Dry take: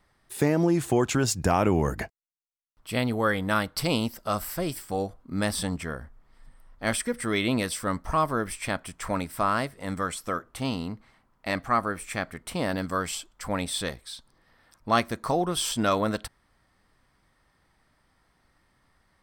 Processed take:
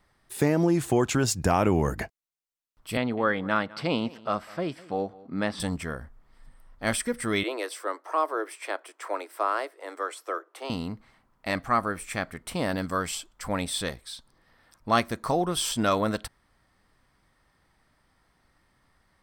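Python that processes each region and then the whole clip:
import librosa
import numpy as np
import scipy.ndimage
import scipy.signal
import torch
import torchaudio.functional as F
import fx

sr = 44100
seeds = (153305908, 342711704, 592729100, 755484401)

y = fx.chain(x, sr, fx.bandpass_edges(low_hz=160.0, high_hz=3100.0),
    fx.echo_single(ms=202, db=-21.0), at=(2.97, 5.6))
y = fx.chain(y, sr, fx.steep_highpass(hz=320.0, slope=72),
    fx.high_shelf(hz=2500.0, db=-8.5), at=(7.43, 10.7))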